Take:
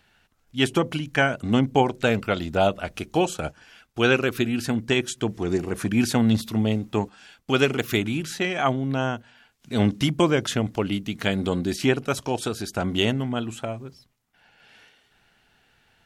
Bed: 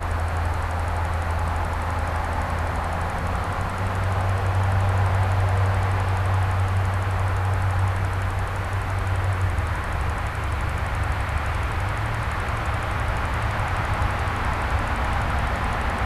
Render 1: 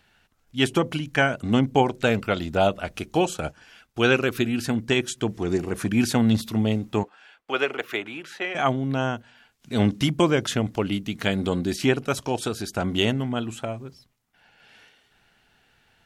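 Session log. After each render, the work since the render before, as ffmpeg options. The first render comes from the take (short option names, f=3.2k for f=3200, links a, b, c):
-filter_complex "[0:a]asettb=1/sr,asplit=3[a][b][c];[a]atrim=end=7.034[d];[b]atrim=start=7.03:end=8.55,asetpts=PTS-STARTPTS,afade=t=in:d=0.004:c=qsin,afade=t=out:st=1.516:d=0.004:c=qsin,acrossover=split=390 3100:gain=0.0794 1 0.2[e][f][g];[e][f][g]amix=inputs=3:normalize=0[h];[c]atrim=start=8.546[i];[d][h]acrossfade=d=0.004:c1=hsin:c2=qsin[j];[j][i]acrossfade=d=0.004:c1=qsin:c2=hsin"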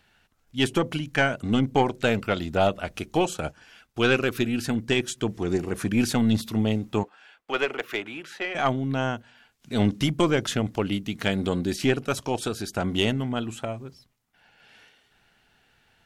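-af "aeval=exprs='(tanh(3.16*val(0)+0.35)-tanh(0.35))/3.16':c=same"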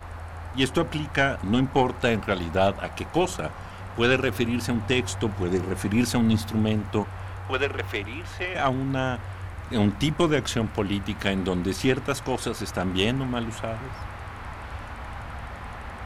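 -filter_complex "[1:a]volume=-13dB[a];[0:a][a]amix=inputs=2:normalize=0"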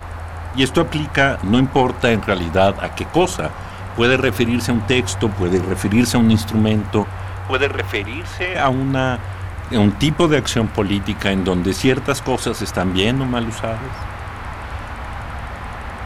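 -af "volume=8dB,alimiter=limit=-3dB:level=0:latency=1"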